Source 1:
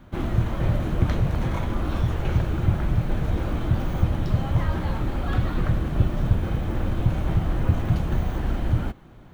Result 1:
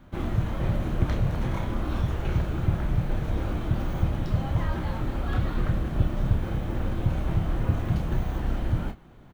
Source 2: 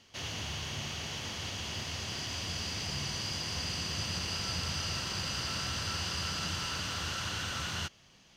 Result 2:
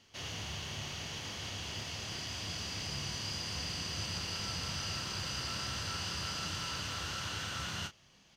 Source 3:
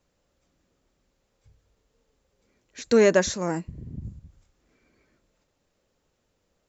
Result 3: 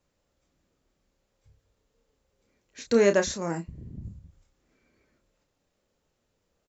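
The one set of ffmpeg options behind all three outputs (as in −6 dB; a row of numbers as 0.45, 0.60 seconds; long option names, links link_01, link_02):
-filter_complex "[0:a]asplit=2[link_01][link_02];[link_02]adelay=30,volume=-8dB[link_03];[link_01][link_03]amix=inputs=2:normalize=0,volume=-3.5dB"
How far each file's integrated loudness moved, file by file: −3.0, −3.0, −2.5 LU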